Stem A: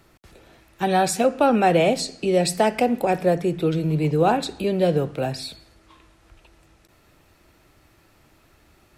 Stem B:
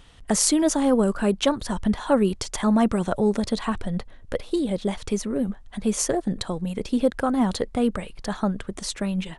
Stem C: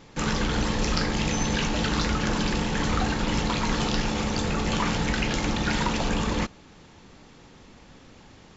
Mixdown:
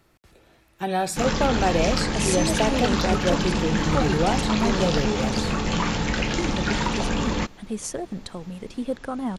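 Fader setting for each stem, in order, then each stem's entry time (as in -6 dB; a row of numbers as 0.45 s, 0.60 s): -5.0 dB, -7.0 dB, +1.0 dB; 0.00 s, 1.85 s, 1.00 s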